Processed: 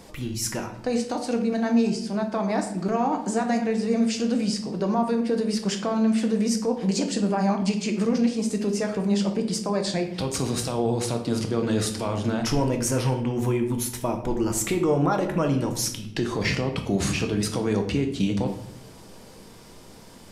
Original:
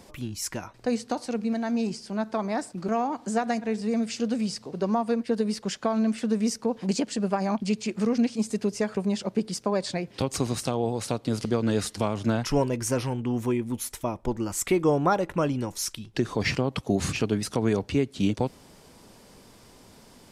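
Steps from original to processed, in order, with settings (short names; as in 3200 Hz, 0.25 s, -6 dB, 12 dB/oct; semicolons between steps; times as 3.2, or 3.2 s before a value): limiter -19 dBFS, peak gain reduction 6.5 dB; shoebox room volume 150 m³, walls mixed, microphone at 0.61 m; gain +3 dB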